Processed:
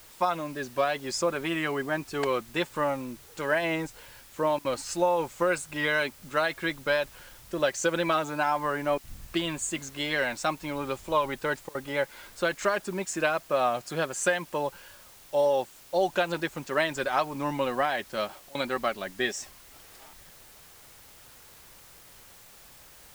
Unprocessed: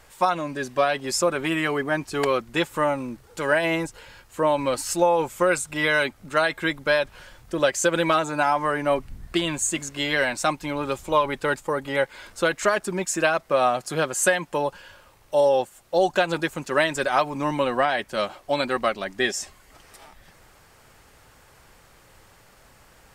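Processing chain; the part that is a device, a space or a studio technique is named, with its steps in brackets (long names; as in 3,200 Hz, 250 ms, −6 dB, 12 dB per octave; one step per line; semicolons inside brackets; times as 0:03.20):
worn cassette (low-pass filter 7,800 Hz; tape wow and flutter; tape dropouts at 0:04.59/0:08.98/0:11.69/0:18.49, 57 ms −25 dB; white noise bed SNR 23 dB)
level −5 dB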